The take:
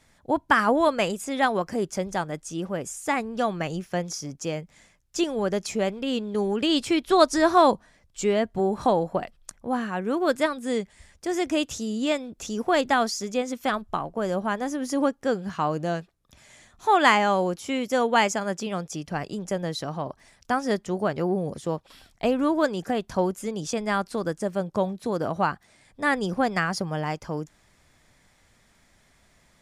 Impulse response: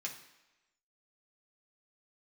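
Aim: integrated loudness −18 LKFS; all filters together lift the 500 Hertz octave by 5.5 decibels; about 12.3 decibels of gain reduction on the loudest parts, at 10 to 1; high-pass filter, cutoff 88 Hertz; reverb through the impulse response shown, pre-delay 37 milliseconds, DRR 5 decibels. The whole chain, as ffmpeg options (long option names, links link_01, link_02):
-filter_complex "[0:a]highpass=88,equalizer=frequency=500:width_type=o:gain=7,acompressor=threshold=-21dB:ratio=10,asplit=2[link_01][link_02];[1:a]atrim=start_sample=2205,adelay=37[link_03];[link_02][link_03]afir=irnorm=-1:irlink=0,volume=-5dB[link_04];[link_01][link_04]amix=inputs=2:normalize=0,volume=9dB"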